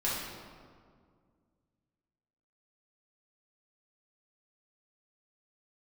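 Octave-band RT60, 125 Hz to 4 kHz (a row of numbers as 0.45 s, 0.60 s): 2.7 s, 2.6 s, 2.1 s, 1.9 s, 1.4 s, 1.1 s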